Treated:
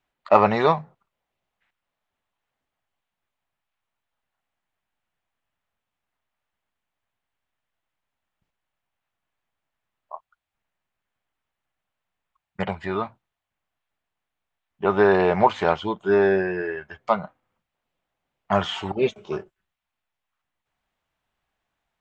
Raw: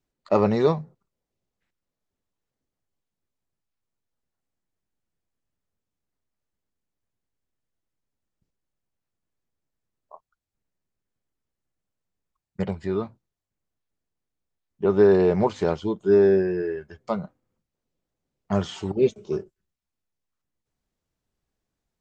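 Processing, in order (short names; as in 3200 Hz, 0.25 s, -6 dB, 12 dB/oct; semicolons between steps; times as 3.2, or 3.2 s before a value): band shelf 1500 Hz +12.5 dB 2.8 oct; gain -2.5 dB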